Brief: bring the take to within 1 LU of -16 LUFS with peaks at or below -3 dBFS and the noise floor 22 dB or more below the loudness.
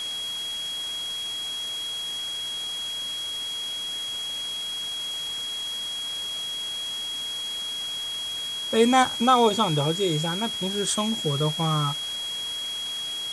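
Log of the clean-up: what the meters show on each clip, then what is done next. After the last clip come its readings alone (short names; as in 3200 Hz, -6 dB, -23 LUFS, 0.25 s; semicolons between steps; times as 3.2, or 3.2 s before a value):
steady tone 3300 Hz; tone level -29 dBFS; noise floor -32 dBFS; noise floor target -48 dBFS; loudness -26.0 LUFS; peak -7.5 dBFS; loudness target -16.0 LUFS
-> notch 3300 Hz, Q 30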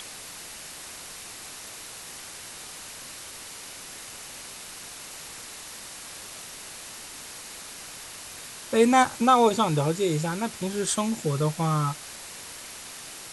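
steady tone none; noise floor -42 dBFS; noise floor target -51 dBFS
-> denoiser 9 dB, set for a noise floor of -42 dBFS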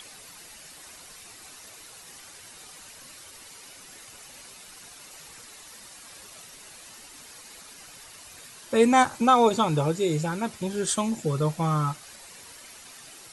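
noise floor -47 dBFS; loudness -24.0 LUFS; peak -8.0 dBFS; loudness target -16.0 LUFS
-> gain +8 dB; limiter -3 dBFS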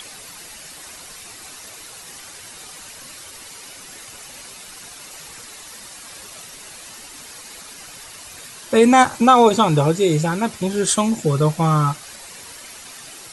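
loudness -16.5 LUFS; peak -3.0 dBFS; noise floor -39 dBFS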